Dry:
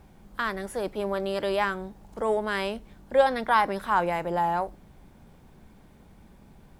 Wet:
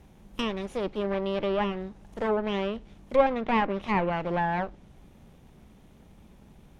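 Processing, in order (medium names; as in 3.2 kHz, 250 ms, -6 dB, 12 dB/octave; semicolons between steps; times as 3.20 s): comb filter that takes the minimum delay 0.32 ms; low-pass that closes with the level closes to 1.9 kHz, closed at -22.5 dBFS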